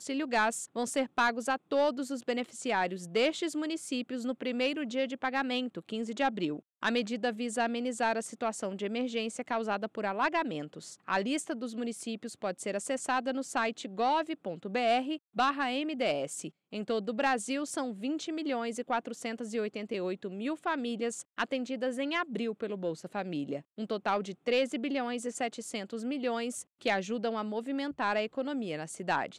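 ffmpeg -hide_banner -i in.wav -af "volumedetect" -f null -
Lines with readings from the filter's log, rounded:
mean_volume: -33.0 dB
max_volume: -18.3 dB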